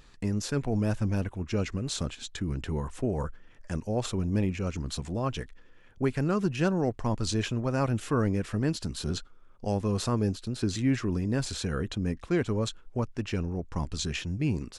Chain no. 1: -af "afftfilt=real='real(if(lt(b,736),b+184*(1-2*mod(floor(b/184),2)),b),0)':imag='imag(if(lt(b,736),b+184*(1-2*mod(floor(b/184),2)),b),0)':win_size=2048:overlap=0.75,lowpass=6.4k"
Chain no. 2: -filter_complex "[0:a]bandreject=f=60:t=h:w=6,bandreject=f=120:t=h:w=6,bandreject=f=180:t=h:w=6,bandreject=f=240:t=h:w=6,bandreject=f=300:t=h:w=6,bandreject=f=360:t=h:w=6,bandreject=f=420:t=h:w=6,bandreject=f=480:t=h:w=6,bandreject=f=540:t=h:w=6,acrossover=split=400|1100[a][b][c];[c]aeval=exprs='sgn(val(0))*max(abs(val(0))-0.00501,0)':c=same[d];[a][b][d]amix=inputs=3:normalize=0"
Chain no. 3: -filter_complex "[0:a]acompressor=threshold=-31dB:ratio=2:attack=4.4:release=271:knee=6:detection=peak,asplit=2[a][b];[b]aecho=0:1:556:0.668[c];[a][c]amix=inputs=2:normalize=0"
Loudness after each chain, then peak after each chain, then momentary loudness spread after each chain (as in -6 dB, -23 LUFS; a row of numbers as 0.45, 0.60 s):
-27.0, -31.5, -33.5 LUFS; -13.5, -13.0, -18.0 dBFS; 7, 7, 4 LU